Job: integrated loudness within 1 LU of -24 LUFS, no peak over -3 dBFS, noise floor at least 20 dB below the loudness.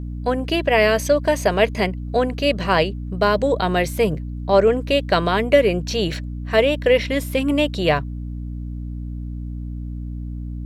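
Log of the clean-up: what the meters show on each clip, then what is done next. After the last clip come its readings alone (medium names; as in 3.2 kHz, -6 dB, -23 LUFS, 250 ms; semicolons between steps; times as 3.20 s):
hum 60 Hz; highest harmonic 300 Hz; hum level -26 dBFS; loudness -19.5 LUFS; peak level -3.0 dBFS; loudness target -24.0 LUFS
-> hum notches 60/120/180/240/300 Hz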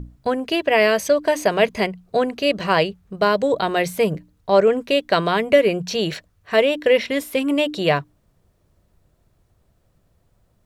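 hum not found; loudness -19.5 LUFS; peak level -3.0 dBFS; loudness target -24.0 LUFS
-> trim -4.5 dB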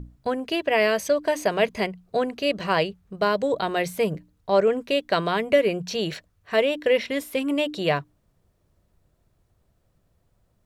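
loudness -24.0 LUFS; peak level -7.5 dBFS; noise floor -68 dBFS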